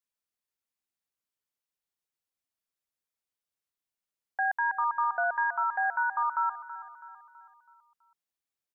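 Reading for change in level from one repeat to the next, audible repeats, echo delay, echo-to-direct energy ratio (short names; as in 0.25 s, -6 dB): -6.5 dB, 4, 0.327 s, -13.0 dB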